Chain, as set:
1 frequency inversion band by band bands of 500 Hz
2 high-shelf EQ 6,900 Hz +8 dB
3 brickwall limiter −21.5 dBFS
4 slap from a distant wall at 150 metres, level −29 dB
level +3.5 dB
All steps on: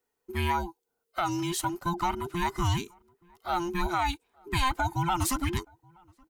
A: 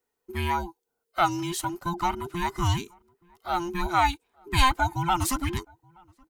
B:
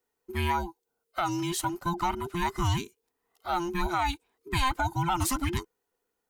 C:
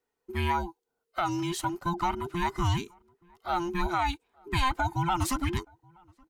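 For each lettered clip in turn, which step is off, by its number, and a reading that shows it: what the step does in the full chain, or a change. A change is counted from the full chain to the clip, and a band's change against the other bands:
3, change in crest factor +6.5 dB
4, echo-to-direct ratio −31.5 dB to none audible
2, 8 kHz band −4.0 dB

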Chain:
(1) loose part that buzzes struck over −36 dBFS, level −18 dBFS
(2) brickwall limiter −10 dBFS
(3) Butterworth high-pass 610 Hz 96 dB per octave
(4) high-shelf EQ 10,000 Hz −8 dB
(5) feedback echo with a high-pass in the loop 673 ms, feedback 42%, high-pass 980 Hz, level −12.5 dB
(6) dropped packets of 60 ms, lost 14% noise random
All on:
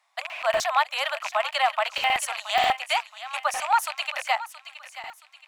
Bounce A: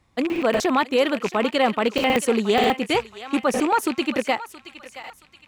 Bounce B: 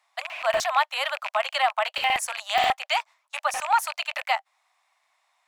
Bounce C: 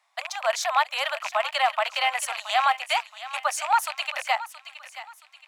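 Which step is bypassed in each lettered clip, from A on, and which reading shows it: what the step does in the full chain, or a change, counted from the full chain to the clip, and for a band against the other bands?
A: 3, 500 Hz band +9.0 dB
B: 5, change in momentary loudness spread −10 LU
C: 6, 8 kHz band +2.0 dB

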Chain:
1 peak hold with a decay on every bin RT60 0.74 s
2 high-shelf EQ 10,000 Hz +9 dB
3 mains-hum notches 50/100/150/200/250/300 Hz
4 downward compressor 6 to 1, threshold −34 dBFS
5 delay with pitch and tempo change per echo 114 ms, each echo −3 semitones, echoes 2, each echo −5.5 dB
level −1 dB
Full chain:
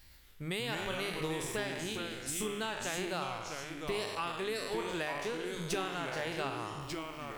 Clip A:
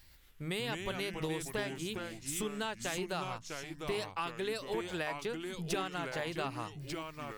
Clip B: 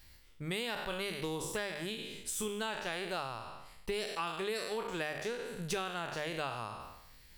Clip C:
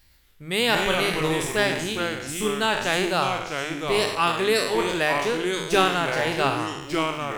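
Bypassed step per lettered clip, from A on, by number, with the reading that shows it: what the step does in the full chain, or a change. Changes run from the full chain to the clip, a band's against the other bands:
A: 1, 125 Hz band +2.0 dB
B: 5, change in integrated loudness −1.0 LU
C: 4, average gain reduction 10.0 dB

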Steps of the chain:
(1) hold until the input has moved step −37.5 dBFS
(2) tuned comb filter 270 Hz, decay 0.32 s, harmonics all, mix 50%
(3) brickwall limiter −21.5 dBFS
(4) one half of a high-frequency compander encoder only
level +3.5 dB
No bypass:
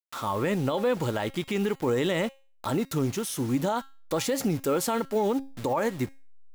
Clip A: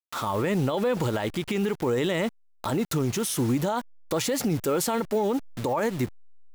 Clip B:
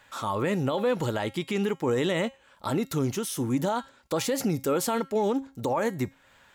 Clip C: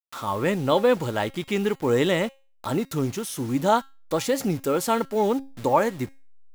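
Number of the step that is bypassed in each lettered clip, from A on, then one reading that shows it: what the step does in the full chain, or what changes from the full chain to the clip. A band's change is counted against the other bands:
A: 2, 8 kHz band +2.0 dB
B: 1, distortion level −22 dB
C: 3, average gain reduction 1.5 dB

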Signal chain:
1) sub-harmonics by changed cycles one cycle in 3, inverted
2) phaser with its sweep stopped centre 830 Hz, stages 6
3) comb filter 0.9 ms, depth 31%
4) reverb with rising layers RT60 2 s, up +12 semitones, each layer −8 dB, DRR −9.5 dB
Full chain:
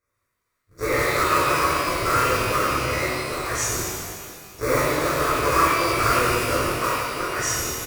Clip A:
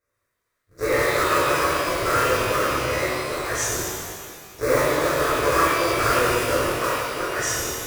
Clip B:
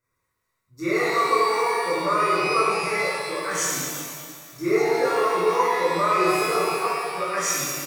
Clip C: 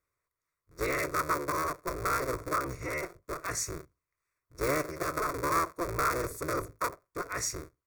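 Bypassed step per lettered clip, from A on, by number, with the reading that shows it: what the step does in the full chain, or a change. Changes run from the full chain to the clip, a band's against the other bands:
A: 3, 500 Hz band +2.5 dB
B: 1, 125 Hz band −8.5 dB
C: 4, 4 kHz band −5.0 dB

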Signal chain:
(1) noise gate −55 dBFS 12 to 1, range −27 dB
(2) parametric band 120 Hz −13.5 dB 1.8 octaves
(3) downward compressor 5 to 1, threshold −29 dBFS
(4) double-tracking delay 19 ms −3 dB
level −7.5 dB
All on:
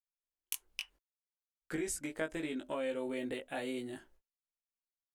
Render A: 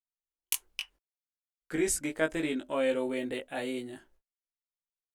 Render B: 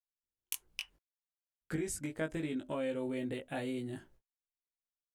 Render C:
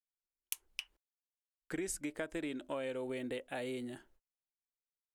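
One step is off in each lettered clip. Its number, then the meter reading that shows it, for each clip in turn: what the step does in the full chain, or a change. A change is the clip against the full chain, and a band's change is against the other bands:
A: 3, change in crest factor −1.5 dB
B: 2, 125 Hz band +10.0 dB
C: 4, 125 Hz band +1.5 dB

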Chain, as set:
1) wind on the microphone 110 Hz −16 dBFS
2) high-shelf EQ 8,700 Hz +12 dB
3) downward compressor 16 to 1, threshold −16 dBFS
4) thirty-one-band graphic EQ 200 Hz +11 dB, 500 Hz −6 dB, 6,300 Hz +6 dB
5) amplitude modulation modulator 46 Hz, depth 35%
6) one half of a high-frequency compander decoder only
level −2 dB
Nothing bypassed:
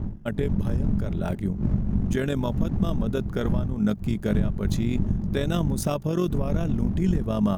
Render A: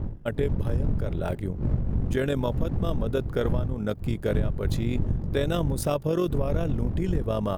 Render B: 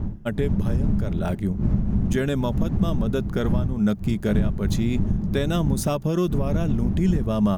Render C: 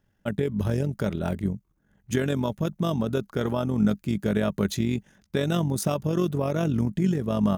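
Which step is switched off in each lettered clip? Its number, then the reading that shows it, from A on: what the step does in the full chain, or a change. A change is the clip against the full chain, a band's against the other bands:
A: 4, 250 Hz band −4.5 dB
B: 5, change in crest factor −1.5 dB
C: 1, 125 Hz band −4.0 dB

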